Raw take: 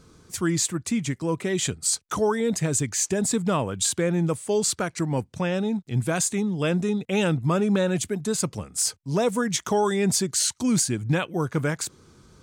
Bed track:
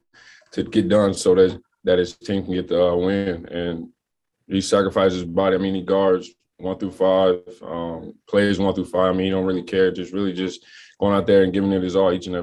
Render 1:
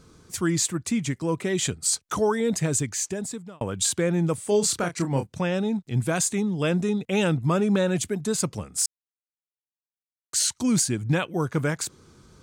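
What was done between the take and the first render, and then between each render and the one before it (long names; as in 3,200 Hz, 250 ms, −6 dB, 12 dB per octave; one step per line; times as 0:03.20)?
0:02.72–0:03.61: fade out
0:04.35–0:05.27: double-tracking delay 29 ms −7 dB
0:08.86–0:10.33: silence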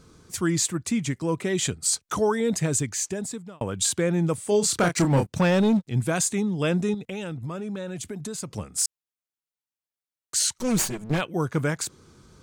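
0:04.78–0:05.88: leveller curve on the samples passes 2
0:06.94–0:08.55: downward compressor, threshold −30 dBFS
0:10.58–0:11.21: lower of the sound and its delayed copy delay 5.3 ms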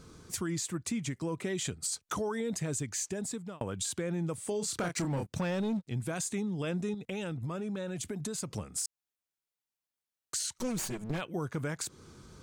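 brickwall limiter −17.5 dBFS, peak gain reduction 6 dB
downward compressor 2.5 to 1, threshold −35 dBFS, peak gain reduction 10 dB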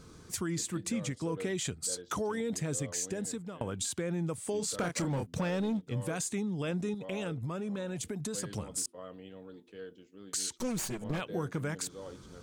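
mix in bed track −28 dB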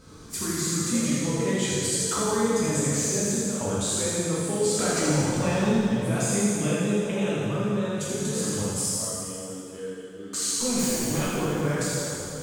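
on a send: delay with a high-pass on its return 82 ms, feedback 68%, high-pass 3,600 Hz, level −3 dB
on the sum: dense smooth reverb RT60 2.6 s, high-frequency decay 0.7×, DRR −8.5 dB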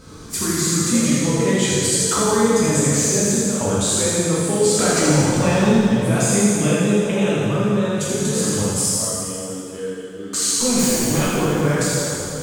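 level +7.5 dB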